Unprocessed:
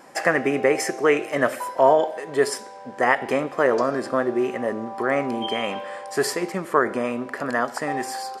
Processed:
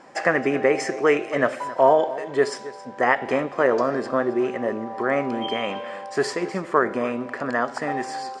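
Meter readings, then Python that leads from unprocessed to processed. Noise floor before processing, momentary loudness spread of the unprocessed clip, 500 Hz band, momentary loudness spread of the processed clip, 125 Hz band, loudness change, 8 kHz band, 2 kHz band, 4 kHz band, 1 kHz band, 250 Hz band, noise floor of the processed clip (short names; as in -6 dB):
-40 dBFS, 8 LU, 0.0 dB, 8 LU, 0.0 dB, 0.0 dB, -6.0 dB, -0.5 dB, -2.0 dB, 0.0 dB, 0.0 dB, -40 dBFS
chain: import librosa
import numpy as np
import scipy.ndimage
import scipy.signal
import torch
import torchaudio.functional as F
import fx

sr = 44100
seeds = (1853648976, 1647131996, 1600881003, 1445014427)

y = scipy.signal.sosfilt(scipy.signal.butter(4, 8100.0, 'lowpass', fs=sr, output='sos'), x)
y = fx.high_shelf(y, sr, hz=5600.0, db=-6.5)
y = y + 10.0 ** (-17.0 / 20.0) * np.pad(y, (int(270 * sr / 1000.0), 0))[:len(y)]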